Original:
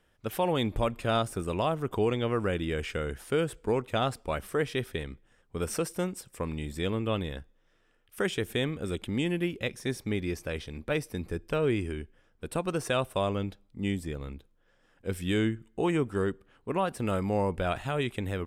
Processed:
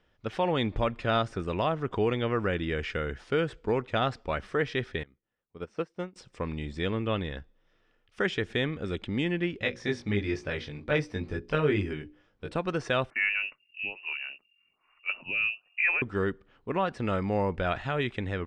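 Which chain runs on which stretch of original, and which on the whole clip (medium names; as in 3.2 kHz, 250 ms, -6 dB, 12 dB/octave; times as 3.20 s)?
5.03–6.16 s: high-pass 110 Hz 6 dB/octave + treble shelf 3.5 kHz -7.5 dB + upward expansion 2.5:1, over -38 dBFS
9.59–12.52 s: hum notches 60/120/180/240/300/360/420/480/540 Hz + doubling 20 ms -3 dB
13.10–16.02 s: frequency inversion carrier 2.8 kHz + lamp-driven phase shifter 1.2 Hz
whole clip: low-pass 5.6 kHz 24 dB/octave; band-stop 1.6 kHz, Q 24; dynamic bell 1.7 kHz, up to +6 dB, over -51 dBFS, Q 2.3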